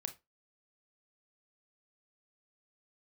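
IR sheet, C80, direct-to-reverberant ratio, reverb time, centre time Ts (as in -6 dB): 24.0 dB, 7.5 dB, 0.20 s, 7 ms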